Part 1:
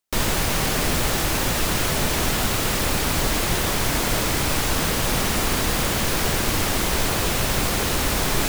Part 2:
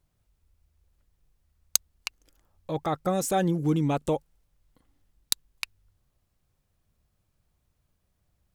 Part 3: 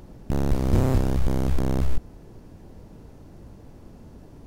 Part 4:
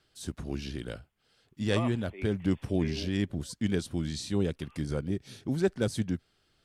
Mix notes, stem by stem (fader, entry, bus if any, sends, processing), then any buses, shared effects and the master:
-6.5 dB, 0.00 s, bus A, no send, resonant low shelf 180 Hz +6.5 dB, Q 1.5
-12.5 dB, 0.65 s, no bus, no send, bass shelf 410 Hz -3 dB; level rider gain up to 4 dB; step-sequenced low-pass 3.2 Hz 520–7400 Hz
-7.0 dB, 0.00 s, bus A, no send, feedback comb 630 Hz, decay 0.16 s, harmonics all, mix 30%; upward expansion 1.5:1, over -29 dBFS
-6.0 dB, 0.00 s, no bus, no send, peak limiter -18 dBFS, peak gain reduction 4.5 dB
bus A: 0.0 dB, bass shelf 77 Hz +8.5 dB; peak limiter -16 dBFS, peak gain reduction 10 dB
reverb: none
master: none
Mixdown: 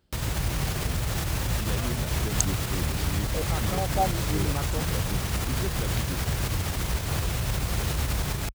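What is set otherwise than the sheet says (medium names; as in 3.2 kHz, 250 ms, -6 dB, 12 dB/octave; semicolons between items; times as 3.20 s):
stem 3 -7.0 dB -> -15.0 dB; master: extra high-pass 42 Hz 24 dB/octave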